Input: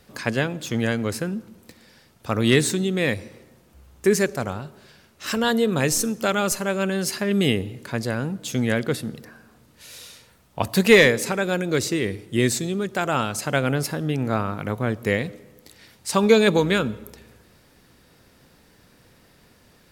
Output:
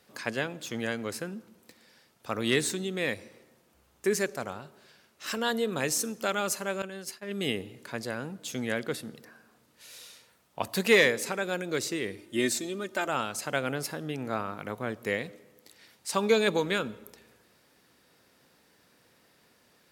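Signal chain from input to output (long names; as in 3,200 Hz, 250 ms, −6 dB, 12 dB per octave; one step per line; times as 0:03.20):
high-pass filter 320 Hz 6 dB per octave
0:06.82–0:07.54: downward expander −20 dBFS
0:12.17–0:13.08: comb filter 3.3 ms, depth 65%
level −6 dB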